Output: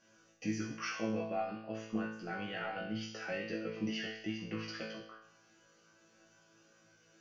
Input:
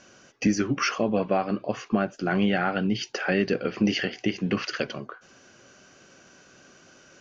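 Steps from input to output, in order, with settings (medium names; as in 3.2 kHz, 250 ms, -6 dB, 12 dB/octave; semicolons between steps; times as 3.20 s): chord resonator A2 fifth, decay 0.71 s; trim +4.5 dB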